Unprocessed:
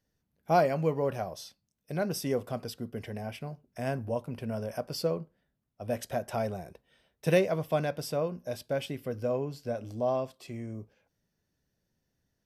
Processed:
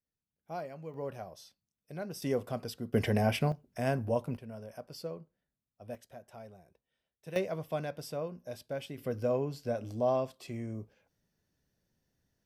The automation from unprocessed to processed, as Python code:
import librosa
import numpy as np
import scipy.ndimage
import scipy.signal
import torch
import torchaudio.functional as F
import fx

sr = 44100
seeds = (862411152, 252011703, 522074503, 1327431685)

y = fx.gain(x, sr, db=fx.steps((0.0, -16.0), (0.94, -9.0), (2.22, -1.5), (2.94, 10.0), (3.52, 1.5), (4.37, -10.5), (5.95, -17.5), (7.36, -6.5), (8.98, 0.0)))